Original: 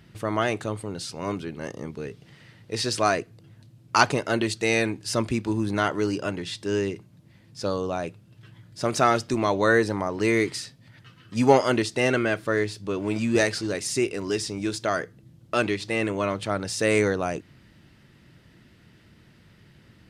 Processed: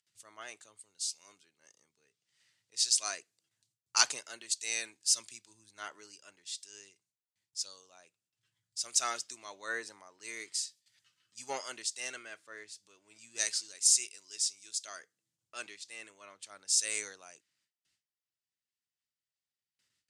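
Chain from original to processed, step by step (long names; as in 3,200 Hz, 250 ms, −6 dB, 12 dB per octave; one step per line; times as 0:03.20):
noise gate with hold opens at −43 dBFS
upward compression, threshold −26 dBFS
resonant band-pass 7,400 Hz, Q 1.9
multiband upward and downward expander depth 100%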